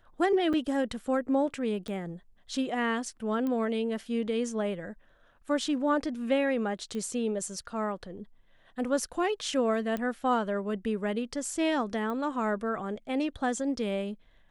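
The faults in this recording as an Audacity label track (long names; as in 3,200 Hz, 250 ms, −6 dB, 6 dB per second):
0.530000	0.540000	drop-out 5.7 ms
1.880000	1.880000	click −25 dBFS
3.470000	3.470000	click −22 dBFS
6.950000	6.950000	click −26 dBFS
9.970000	9.970000	click −21 dBFS
12.100000	12.100000	click −25 dBFS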